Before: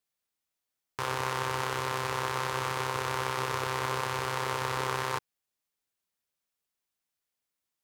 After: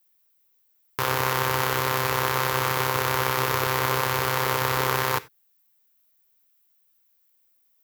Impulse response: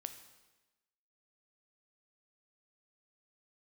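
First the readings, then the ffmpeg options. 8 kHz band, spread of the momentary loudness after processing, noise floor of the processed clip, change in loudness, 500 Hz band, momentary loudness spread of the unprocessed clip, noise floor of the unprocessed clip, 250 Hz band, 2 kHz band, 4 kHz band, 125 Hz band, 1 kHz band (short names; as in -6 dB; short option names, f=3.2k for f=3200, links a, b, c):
+8.5 dB, 2 LU, -66 dBFS, +8.0 dB, +7.5 dB, 2 LU, under -85 dBFS, +7.5 dB, +7.5 dB, +7.5 dB, +8.0 dB, +6.5 dB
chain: -filter_complex "[0:a]aexciter=amount=5.9:drive=3.5:freq=12k,asplit=2[a][b];[b]equalizer=f=860:w=1.5:g=-4.5[c];[1:a]atrim=start_sample=2205,atrim=end_sample=4410[d];[c][d]afir=irnorm=-1:irlink=0,volume=2.5dB[e];[a][e]amix=inputs=2:normalize=0,volume=2.5dB"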